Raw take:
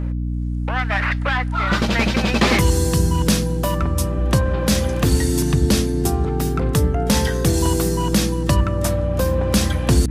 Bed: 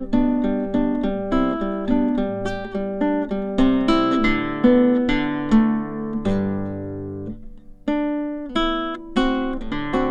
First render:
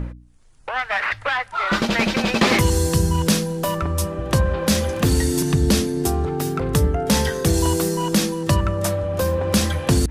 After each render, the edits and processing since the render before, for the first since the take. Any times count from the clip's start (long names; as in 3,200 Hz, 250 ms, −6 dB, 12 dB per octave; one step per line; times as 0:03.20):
hum removal 60 Hz, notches 5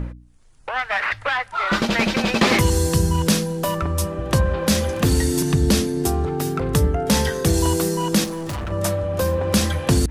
0:08.24–0:08.72: gain into a clipping stage and back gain 25.5 dB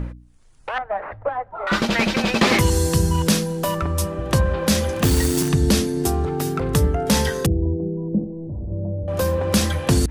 0:00.78–0:01.67: low-pass with resonance 640 Hz, resonance Q 1.8
0:05.03–0:05.49: log-companded quantiser 4 bits
0:07.46–0:09.08: Gaussian smoothing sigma 18 samples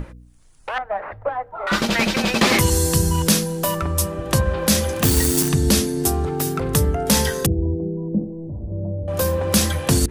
high-shelf EQ 7,000 Hz +9 dB
mains-hum notches 60/120/180/240/300/360/420/480 Hz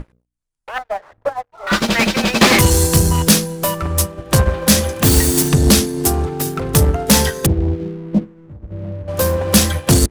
leveller curve on the samples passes 3
expander for the loud parts 2.5 to 1, over −22 dBFS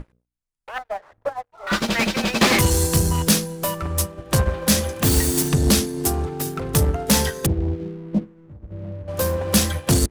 level −5.5 dB